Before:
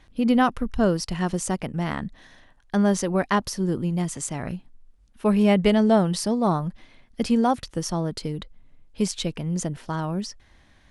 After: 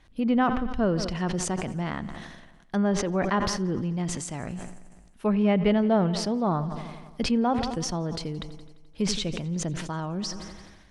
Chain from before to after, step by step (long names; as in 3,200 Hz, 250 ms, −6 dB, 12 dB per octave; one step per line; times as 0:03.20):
echo machine with several playback heads 86 ms, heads first and second, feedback 57%, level −22 dB
treble cut that deepens with the level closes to 2,900 Hz, closed at −18.5 dBFS
level that may fall only so fast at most 39 dB per second
level −4 dB